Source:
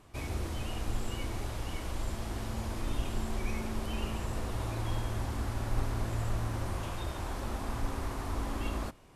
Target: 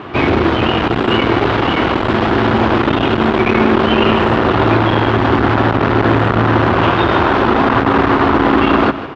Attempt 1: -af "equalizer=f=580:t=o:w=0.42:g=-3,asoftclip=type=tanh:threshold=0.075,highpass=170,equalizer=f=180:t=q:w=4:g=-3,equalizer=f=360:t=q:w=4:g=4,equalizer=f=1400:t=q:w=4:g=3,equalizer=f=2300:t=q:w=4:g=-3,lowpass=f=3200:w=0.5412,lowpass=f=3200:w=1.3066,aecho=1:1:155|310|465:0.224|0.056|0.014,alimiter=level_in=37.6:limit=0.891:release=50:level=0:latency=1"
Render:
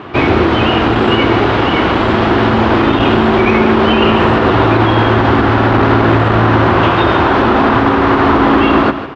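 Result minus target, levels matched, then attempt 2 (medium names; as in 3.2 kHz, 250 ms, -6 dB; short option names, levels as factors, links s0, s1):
saturation: distortion -13 dB
-af "equalizer=f=580:t=o:w=0.42:g=-3,asoftclip=type=tanh:threshold=0.02,highpass=170,equalizer=f=180:t=q:w=4:g=-3,equalizer=f=360:t=q:w=4:g=4,equalizer=f=1400:t=q:w=4:g=3,equalizer=f=2300:t=q:w=4:g=-3,lowpass=f=3200:w=0.5412,lowpass=f=3200:w=1.3066,aecho=1:1:155|310|465:0.224|0.056|0.014,alimiter=level_in=37.6:limit=0.891:release=50:level=0:latency=1"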